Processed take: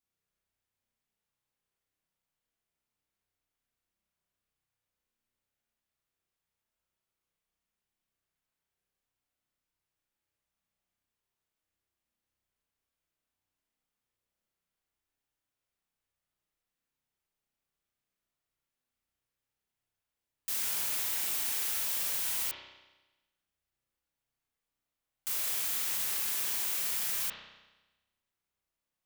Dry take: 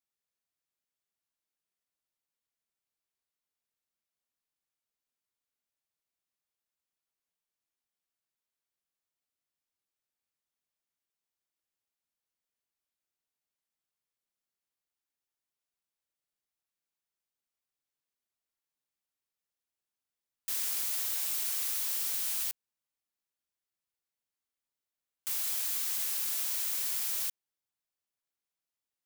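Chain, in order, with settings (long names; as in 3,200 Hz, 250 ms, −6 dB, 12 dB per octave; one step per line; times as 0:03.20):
low-shelf EQ 150 Hz +10 dB
spring reverb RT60 1.1 s, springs 32 ms, chirp 75 ms, DRR −2.5 dB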